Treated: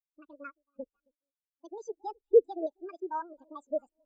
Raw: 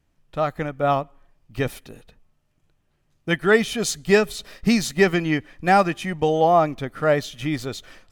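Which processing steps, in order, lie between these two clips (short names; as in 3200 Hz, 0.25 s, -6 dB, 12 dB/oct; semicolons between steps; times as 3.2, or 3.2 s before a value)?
speed mistake 7.5 ips tape played at 15 ips; limiter -14 dBFS, peak gain reduction 9.5 dB; echo with dull and thin repeats by turns 0.269 s, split 1100 Hz, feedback 68%, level -13.5 dB; LFO low-pass square 4.5 Hz 520–7400 Hz; spectral expander 2.5:1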